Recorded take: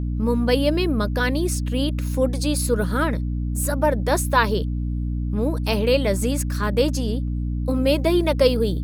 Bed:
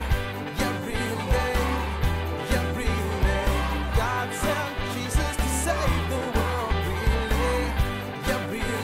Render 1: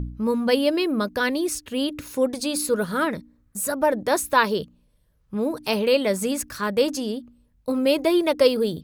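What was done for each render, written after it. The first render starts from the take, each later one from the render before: de-hum 60 Hz, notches 5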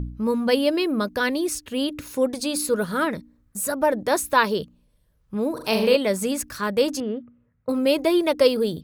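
5.52–5.96 s: flutter echo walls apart 7 m, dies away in 0.51 s; 7.00–7.69 s: cabinet simulation 100–2200 Hz, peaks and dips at 120 Hz +9 dB, 320 Hz -4 dB, 490 Hz +3 dB, 880 Hz -4 dB, 1.3 kHz +8 dB, 2 kHz +6 dB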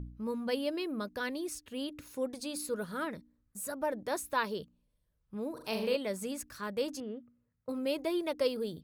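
trim -13 dB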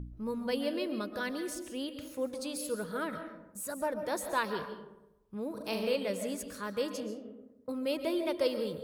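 algorithmic reverb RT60 0.94 s, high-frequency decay 0.45×, pre-delay 95 ms, DRR 7.5 dB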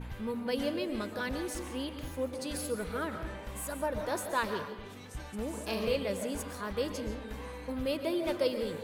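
add bed -19 dB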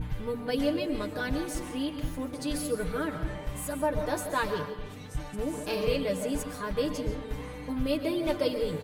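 bass shelf 180 Hz +10.5 dB; comb 6.7 ms, depth 75%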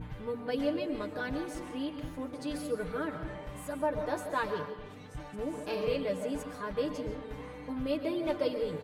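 high-pass 880 Hz 6 dB/octave; tilt EQ -3.5 dB/octave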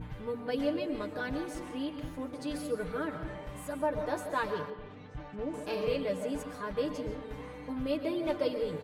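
4.70–5.54 s: distance through air 170 m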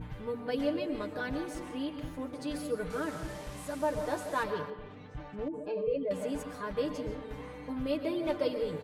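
2.90–4.44 s: one-bit delta coder 64 kbps, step -42.5 dBFS; 5.48–6.11 s: spectral contrast enhancement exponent 1.7

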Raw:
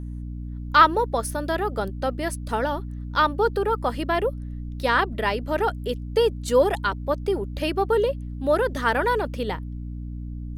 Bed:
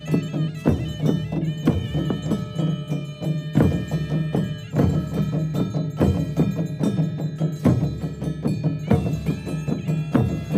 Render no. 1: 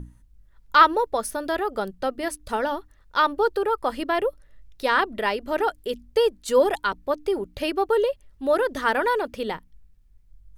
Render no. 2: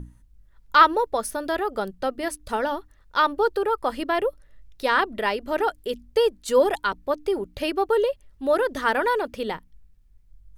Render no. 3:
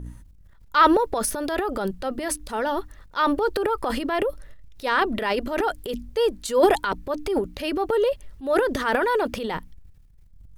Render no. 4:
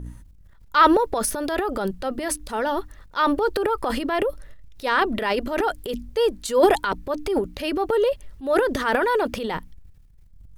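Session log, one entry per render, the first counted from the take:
hum notches 60/120/180/240/300 Hz
no audible change
transient shaper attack -5 dB, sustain +11 dB
trim +1 dB

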